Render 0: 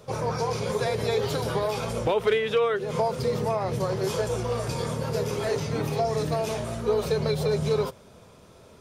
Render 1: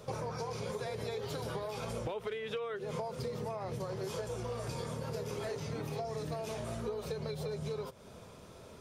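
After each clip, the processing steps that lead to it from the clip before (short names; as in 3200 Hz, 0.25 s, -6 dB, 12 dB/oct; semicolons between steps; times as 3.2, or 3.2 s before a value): compressor 12:1, threshold -34 dBFS, peak gain reduction 16.5 dB; gain -1 dB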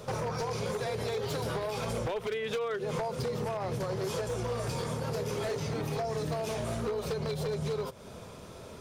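wavefolder -32.5 dBFS; gain +6 dB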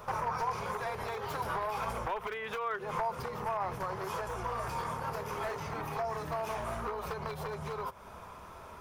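graphic EQ 125/250/500/1000/4000/8000 Hz -10/-7/-9/+8/-9/-9 dB; gain +1.5 dB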